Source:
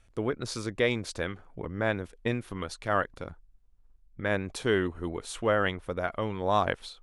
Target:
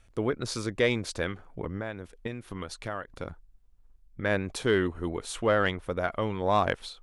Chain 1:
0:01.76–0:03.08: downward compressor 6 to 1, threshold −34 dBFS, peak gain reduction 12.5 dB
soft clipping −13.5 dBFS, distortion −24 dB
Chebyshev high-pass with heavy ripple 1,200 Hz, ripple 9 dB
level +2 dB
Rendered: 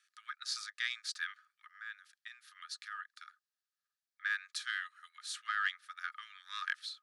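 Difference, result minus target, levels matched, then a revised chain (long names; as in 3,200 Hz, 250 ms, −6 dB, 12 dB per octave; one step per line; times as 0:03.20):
1,000 Hz band −3.0 dB
0:01.76–0:03.08: downward compressor 6 to 1, threshold −34 dBFS, peak gain reduction 12.5 dB
soft clipping −13.5 dBFS, distortion −24 dB
level +2 dB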